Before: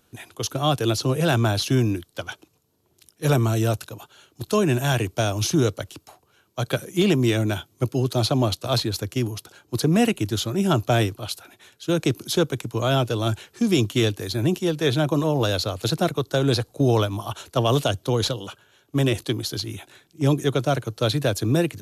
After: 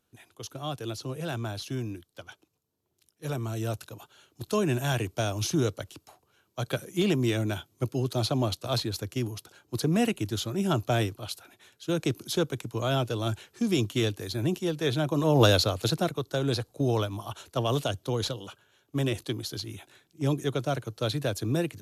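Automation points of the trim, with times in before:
3.37 s -13 dB
3.94 s -6 dB
15.14 s -6 dB
15.44 s +3.5 dB
16.14 s -7 dB

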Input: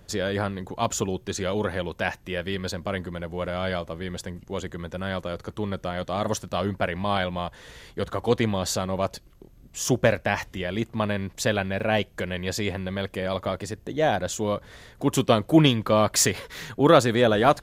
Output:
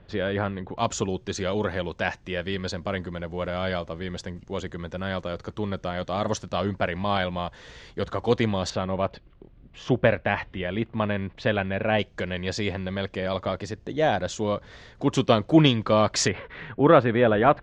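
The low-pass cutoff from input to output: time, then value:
low-pass 24 dB/octave
3.4 kHz
from 0.78 s 6.6 kHz
from 8.70 s 3.4 kHz
from 11.99 s 6.1 kHz
from 16.28 s 2.7 kHz

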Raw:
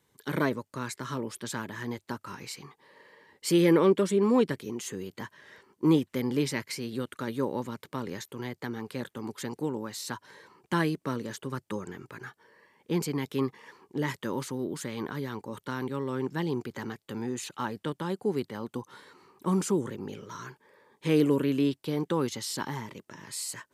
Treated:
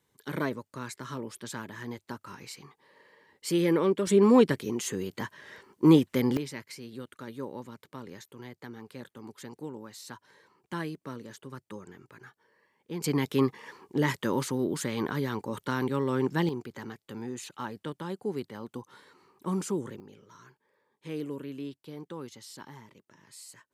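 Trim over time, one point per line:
-3.5 dB
from 4.07 s +4 dB
from 6.37 s -8 dB
from 13.04 s +4 dB
from 16.49 s -4 dB
from 20.00 s -12.5 dB

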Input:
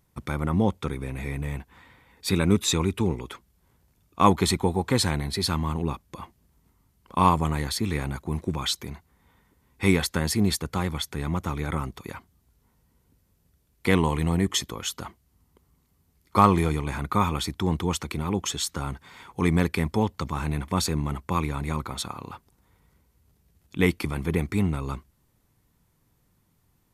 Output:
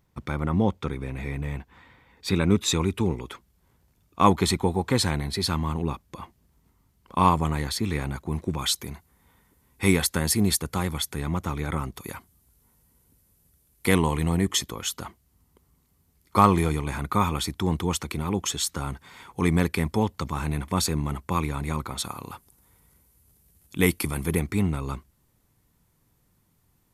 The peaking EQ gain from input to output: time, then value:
peaking EQ 11 kHz 1.1 oct
-8.5 dB
from 2.66 s -1 dB
from 8.59 s +8 dB
from 11.20 s +1.5 dB
from 11.96 s +12 dB
from 13.98 s +4 dB
from 22.04 s +14.5 dB
from 24.39 s +3 dB

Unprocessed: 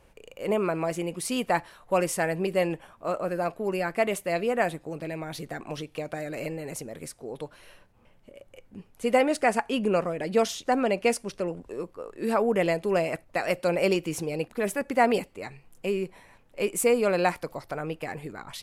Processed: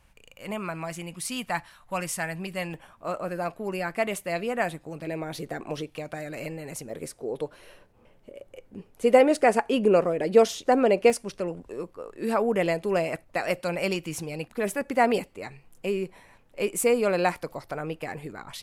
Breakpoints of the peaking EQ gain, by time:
peaking EQ 430 Hz 1.2 oct
-14 dB
from 2.74 s -4 dB
from 5.07 s +4.5 dB
from 5.90 s -3.5 dB
from 6.90 s +6.5 dB
from 11.10 s -0.5 dB
from 13.61 s -6.5 dB
from 14.56 s 0 dB

